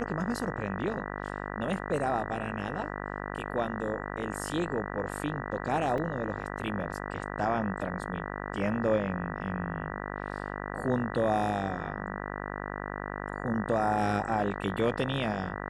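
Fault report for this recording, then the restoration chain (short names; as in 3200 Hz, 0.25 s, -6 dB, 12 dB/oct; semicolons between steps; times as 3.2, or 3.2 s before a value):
buzz 50 Hz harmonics 39 -37 dBFS
5.98 gap 2.5 ms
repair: de-hum 50 Hz, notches 39; interpolate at 5.98, 2.5 ms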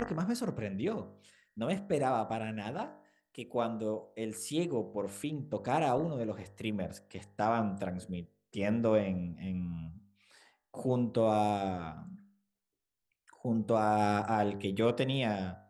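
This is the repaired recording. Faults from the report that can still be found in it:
none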